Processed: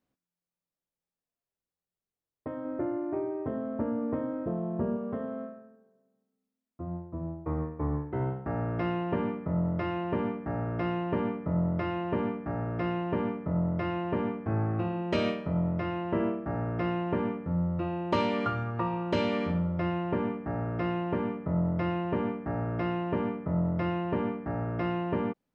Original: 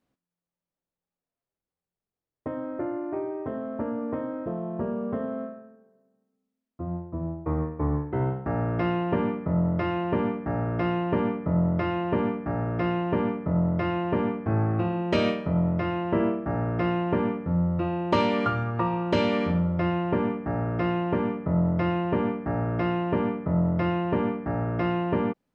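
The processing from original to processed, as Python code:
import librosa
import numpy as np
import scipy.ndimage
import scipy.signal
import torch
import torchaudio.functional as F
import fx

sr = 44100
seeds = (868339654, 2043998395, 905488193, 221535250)

y = fx.low_shelf(x, sr, hz=450.0, db=6.0, at=(2.65, 4.97))
y = y * librosa.db_to_amplitude(-4.5)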